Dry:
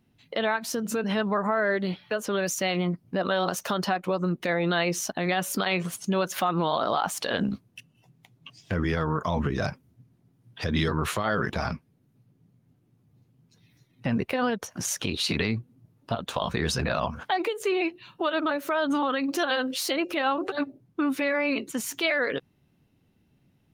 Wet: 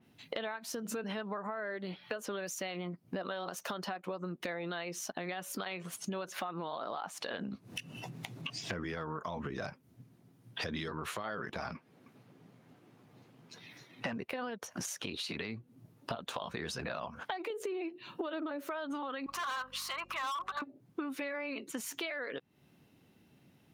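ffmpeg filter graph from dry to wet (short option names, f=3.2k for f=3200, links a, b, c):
-filter_complex "[0:a]asettb=1/sr,asplit=3[a][b][c];[a]atrim=end=6.284[d];[b]atrim=start=6.28:end=8.81,asetpts=PTS-STARTPTS,afade=t=in:d=0.004:c=qsin,afade=t=out:st=2.526:d=0.004:c=qsin,highshelf=f=11k:g=-9,bandreject=f=3.2k:w=23,acompressor=mode=upward:threshold=-32dB:ratio=2.5:attack=3.2:release=140:knee=2.83:detection=peak[e];[c]atrim=start=8.806[f];[d][e]acrossfade=d=0.004:c1=hsin:c2=qsin[g];[g][f]acrossfade=d=0.004:c1=qsin:c2=hsin,asettb=1/sr,asplit=3[h][i][j];[h]atrim=end=11.754[k];[i]atrim=start=11.75:end=14.13,asetpts=PTS-STARTPTS,afade=t=in:d=0.004:c=qsin,afade=t=out:st=2.376:d=0.004:c=qsin,asplit=2[l][m];[m]highpass=f=720:p=1,volume=18dB,asoftclip=type=tanh:threshold=-14dB[n];[l][n]amix=inputs=2:normalize=0,lowpass=f=2.2k:p=1,volume=-6dB,aecho=1:1:311:0.075,atrim=end_sample=104958[o];[j]atrim=start=14.126[p];[k][o]acrossfade=d=0.004:c1=hsin:c2=qsin[q];[q][p]acrossfade=d=0.004:c1=qsin:c2=hsin,asettb=1/sr,asplit=3[r][s][t];[r]atrim=end=17.504[u];[s]atrim=start=17.5:end=18.65,asetpts=PTS-STARTPTS,afade=t=in:d=0.004:c=qsin,afade=t=out:st=1.146:d=0.004:c=qsin,equalizer=f=320:t=o:w=1.9:g=9,acompressor=threshold=-21dB:ratio=3:attack=3.2:release=140:knee=1:detection=peak[v];[t]atrim=start=18.646[w];[u][v]acrossfade=d=0.004:c1=hsin:c2=qsin[x];[x][w]acrossfade=d=0.004:c1=qsin:c2=hsin,asettb=1/sr,asplit=3[y][z][aa];[y]atrim=end=19.264[ab];[z]atrim=start=19.26:end=20.62,asetpts=PTS-STARTPTS,afade=t=in:d=0.004:c=qsin,afade=t=out:st=1.356:d=0.004:c=qsin,highpass=f=1.1k:t=q:w=8.3,aeval=exprs='val(0)+0.00501*(sin(2*PI*50*n/s)+sin(2*PI*2*50*n/s)/2+sin(2*PI*3*50*n/s)/3+sin(2*PI*4*50*n/s)/4+sin(2*PI*5*50*n/s)/5)':c=same,asoftclip=type=hard:threshold=-22.5dB[ac];[aa]atrim=start=20.616[ad];[ab][ac]acrossfade=d=0.004:c1=hsin:c2=qsin[ae];[ae][ad]acrossfade=d=0.004:c1=qsin:c2=hsin,highpass=f=240:p=1,acompressor=threshold=-41dB:ratio=12,adynamicequalizer=threshold=0.00112:dfrequency=3600:dqfactor=0.7:tfrequency=3600:tqfactor=0.7:attack=5:release=100:ratio=0.375:range=1.5:mode=cutabove:tftype=highshelf,volume=5.5dB"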